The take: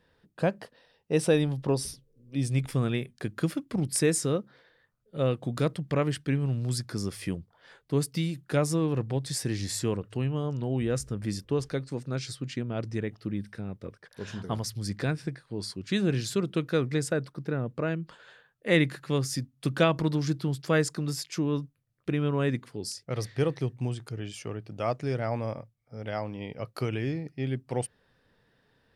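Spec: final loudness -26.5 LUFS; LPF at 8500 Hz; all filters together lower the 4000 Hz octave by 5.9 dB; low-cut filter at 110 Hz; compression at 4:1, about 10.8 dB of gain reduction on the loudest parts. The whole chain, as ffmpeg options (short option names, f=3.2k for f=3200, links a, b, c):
-af "highpass=110,lowpass=8.5k,equalizer=f=4k:t=o:g=-7.5,acompressor=threshold=-31dB:ratio=4,volume=10.5dB"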